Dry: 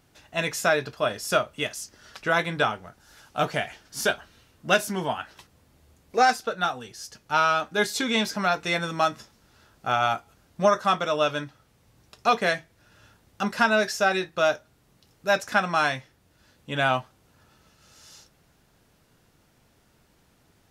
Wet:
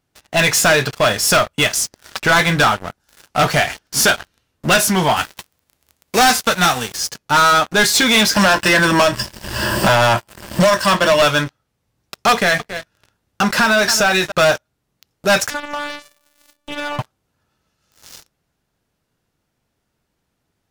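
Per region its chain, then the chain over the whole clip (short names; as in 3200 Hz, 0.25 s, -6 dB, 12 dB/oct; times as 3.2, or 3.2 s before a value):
5.16–6.96 spectral whitening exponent 0.6 + crackle 42/s -46 dBFS
8.36–11.22 ripple EQ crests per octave 1.3, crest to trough 13 dB + three-band squash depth 100%
12.32–14.32 echo 0.275 s -20.5 dB + compressor 2:1, threshold -26 dBFS
15.5–16.99 robotiser 292 Hz + compressor 2.5:1, threshold -45 dBFS + feedback echo 0.214 s, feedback 47%, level -15 dB
whole clip: dynamic EQ 340 Hz, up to -7 dB, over -37 dBFS, Q 0.71; sample leveller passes 5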